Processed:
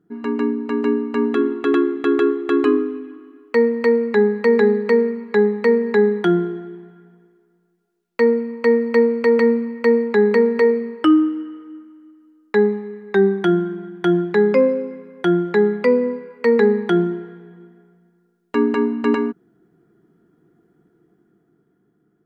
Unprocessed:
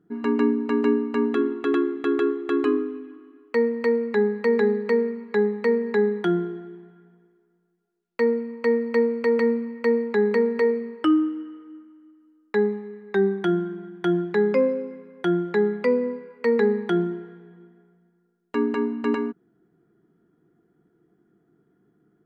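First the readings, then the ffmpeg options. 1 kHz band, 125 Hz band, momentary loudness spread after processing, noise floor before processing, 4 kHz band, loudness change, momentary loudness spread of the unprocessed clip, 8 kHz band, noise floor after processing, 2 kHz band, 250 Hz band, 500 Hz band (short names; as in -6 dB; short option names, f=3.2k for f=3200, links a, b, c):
+5.5 dB, +5.5 dB, 10 LU, -67 dBFS, +5.5 dB, +5.5 dB, 10 LU, n/a, -65 dBFS, +5.5 dB, +5.0 dB, +5.5 dB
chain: -af "dynaudnorm=f=210:g=11:m=6dB"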